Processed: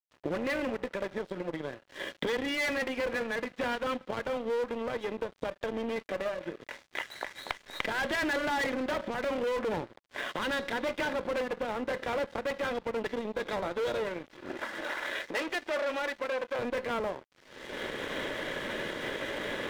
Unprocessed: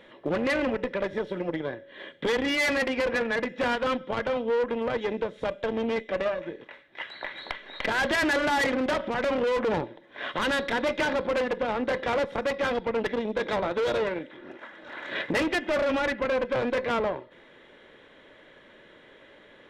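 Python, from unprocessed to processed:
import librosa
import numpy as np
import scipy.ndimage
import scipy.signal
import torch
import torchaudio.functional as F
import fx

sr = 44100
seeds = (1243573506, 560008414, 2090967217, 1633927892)

y = fx.recorder_agc(x, sr, target_db=-20.0, rise_db_per_s=34.0, max_gain_db=30)
y = fx.highpass(y, sr, hz=370.0, slope=12, at=(14.81, 16.59))
y = np.sign(y) * np.maximum(np.abs(y) - 10.0 ** (-40.5 / 20.0), 0.0)
y = F.gain(torch.from_numpy(y), -4.5).numpy()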